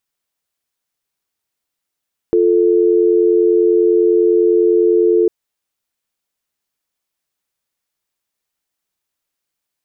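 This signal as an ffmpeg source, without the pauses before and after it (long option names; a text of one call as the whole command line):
ffmpeg -f lavfi -i "aevalsrc='0.251*(sin(2*PI*350*t)+sin(2*PI*440*t))':duration=2.95:sample_rate=44100" out.wav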